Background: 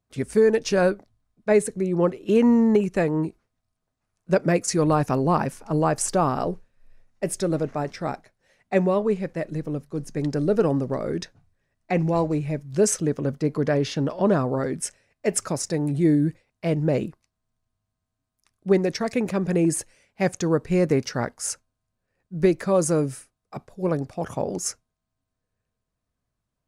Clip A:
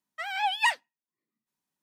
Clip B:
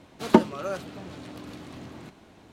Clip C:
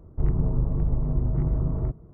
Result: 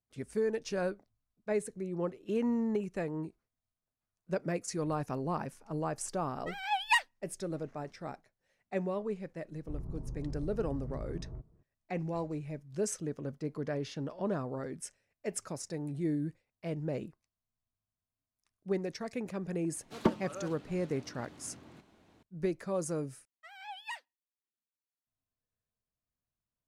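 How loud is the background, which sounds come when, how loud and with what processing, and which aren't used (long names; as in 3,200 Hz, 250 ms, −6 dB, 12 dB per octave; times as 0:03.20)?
background −13.5 dB
0:06.28: mix in A −2 dB + expander for the loud parts, over −33 dBFS
0:09.50: mix in C −17.5 dB
0:19.71: mix in B −11 dB + highs frequency-modulated by the lows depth 0.5 ms
0:23.25: overwrite with A −17.5 dB + high-pass filter 250 Hz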